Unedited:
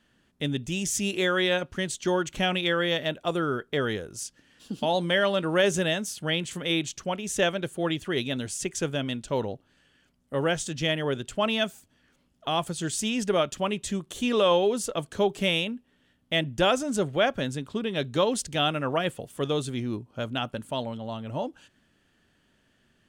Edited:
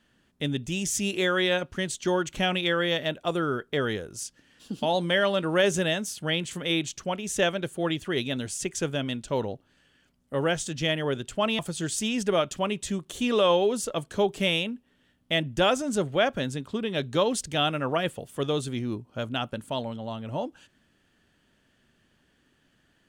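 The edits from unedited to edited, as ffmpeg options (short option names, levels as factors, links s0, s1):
-filter_complex "[0:a]asplit=2[s0][s1];[s0]atrim=end=11.592[s2];[s1]atrim=start=12.598[s3];[s2][s3]acrossfade=d=0.004:c1=hsin:c2=hsin"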